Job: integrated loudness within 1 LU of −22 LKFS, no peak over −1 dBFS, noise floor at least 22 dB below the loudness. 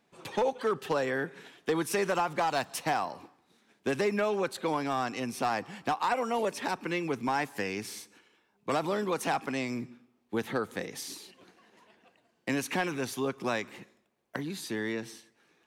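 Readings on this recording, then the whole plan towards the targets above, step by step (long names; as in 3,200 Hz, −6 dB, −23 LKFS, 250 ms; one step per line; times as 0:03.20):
share of clipped samples 0.3%; peaks flattened at −21.0 dBFS; integrated loudness −32.0 LKFS; sample peak −21.0 dBFS; target loudness −22.0 LKFS
→ clipped peaks rebuilt −21 dBFS
level +10 dB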